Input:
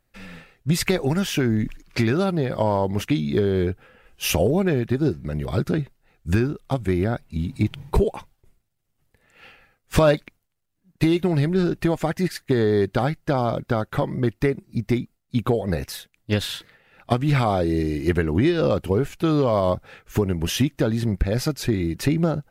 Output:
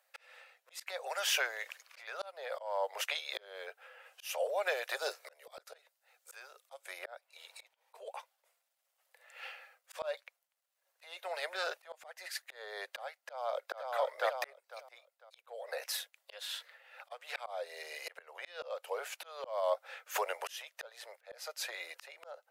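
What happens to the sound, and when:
4.63–6.99 tone controls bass +5 dB, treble +7 dB
13.18–13.79 echo throw 0.5 s, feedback 25%, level -4 dB
whole clip: steep high-pass 510 Hz 72 dB/oct; auto swell 0.769 s; gain +1.5 dB

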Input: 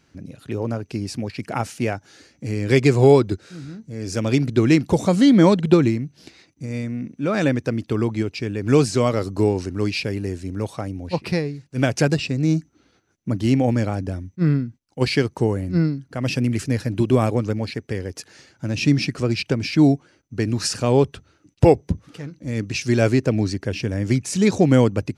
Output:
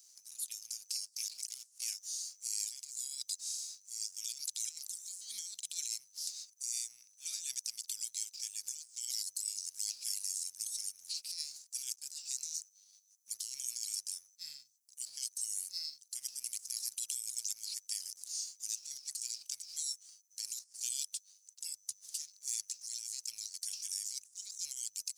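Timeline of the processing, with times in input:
1.06–1.81 overdrive pedal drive 24 dB, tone 6000 Hz, clips at -7.5 dBFS
whole clip: inverse Chebyshev high-pass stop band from 1100 Hz, stop band 80 dB; negative-ratio compressor -54 dBFS, ratio -1; sample leveller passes 1; gain +6 dB

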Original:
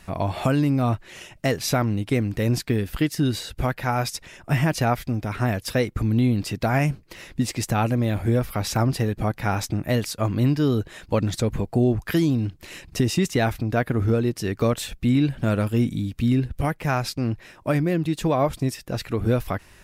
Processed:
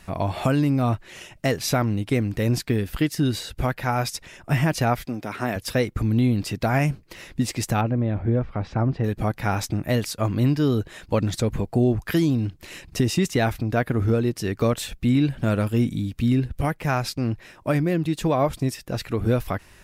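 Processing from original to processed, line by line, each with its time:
5.05–5.56 HPF 210 Hz
7.81–9.04 tape spacing loss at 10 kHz 39 dB

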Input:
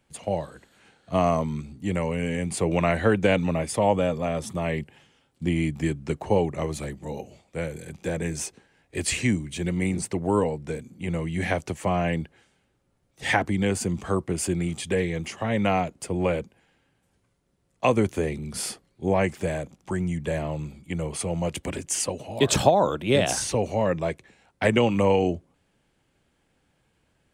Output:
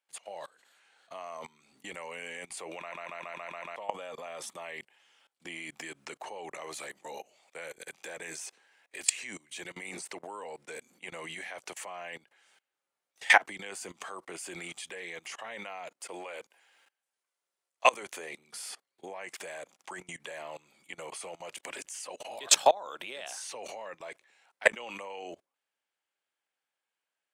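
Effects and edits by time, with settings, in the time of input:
2.78 stutter in place 0.14 s, 7 plays
16.1–18.03 tone controls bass -8 dB, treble +3 dB
whole clip: HPF 840 Hz 12 dB/oct; level quantiser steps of 24 dB; gain +6.5 dB

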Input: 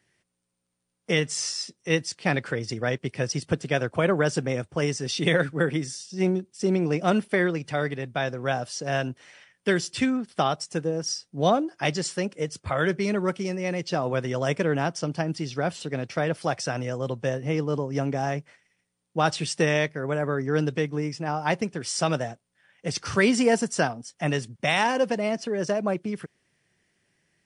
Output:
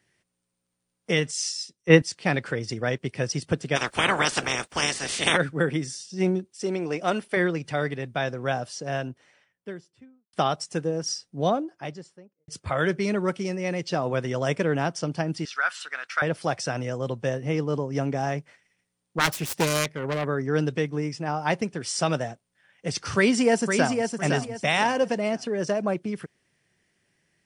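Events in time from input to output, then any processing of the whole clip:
1.31–2.02 three-band expander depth 100%
3.75–5.36 spectral limiter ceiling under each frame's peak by 29 dB
6.47–7.37 bell 150 Hz -9.5 dB 1.9 oct
8.32–10.33 studio fade out
11.06–12.48 studio fade out
15.45–16.22 resonant high-pass 1400 Hz, resonance Q 4.2
18.38–20.25 self-modulated delay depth 0.65 ms
23.16–24.18 echo throw 0.51 s, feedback 30%, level -5.5 dB

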